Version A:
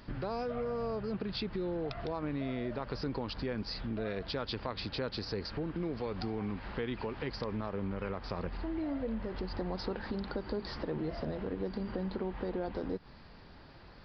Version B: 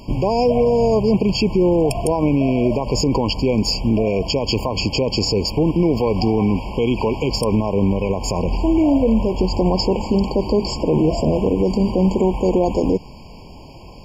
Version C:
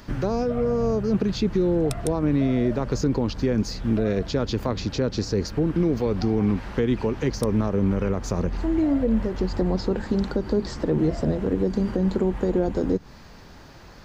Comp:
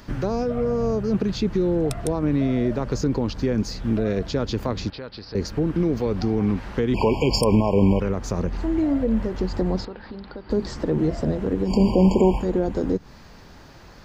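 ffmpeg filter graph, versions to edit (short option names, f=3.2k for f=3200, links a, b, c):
-filter_complex "[0:a]asplit=2[a][b];[1:a]asplit=2[c][d];[2:a]asplit=5[e][f][g][h][i];[e]atrim=end=4.902[j];[a]atrim=start=4.898:end=5.352[k];[f]atrim=start=5.348:end=6.942[l];[c]atrim=start=6.938:end=8.002[m];[g]atrim=start=7.998:end=9.852[n];[b]atrim=start=9.848:end=10.502[o];[h]atrim=start=10.498:end=11.73[p];[d]atrim=start=11.63:end=12.46[q];[i]atrim=start=12.36[r];[j][k]acrossfade=d=0.004:c1=hsin:c2=hsin[s];[s][l]acrossfade=d=0.004:c1=hsin:c2=hsin[t];[t][m]acrossfade=d=0.004:c1=hsin:c2=hsin[u];[u][n]acrossfade=d=0.004:c1=hsin:c2=hsin[v];[v][o]acrossfade=d=0.004:c1=hsin:c2=hsin[w];[w][p]acrossfade=d=0.004:c1=hsin:c2=hsin[x];[x][q]acrossfade=d=0.1:c1=tri:c2=tri[y];[y][r]acrossfade=d=0.1:c1=tri:c2=tri"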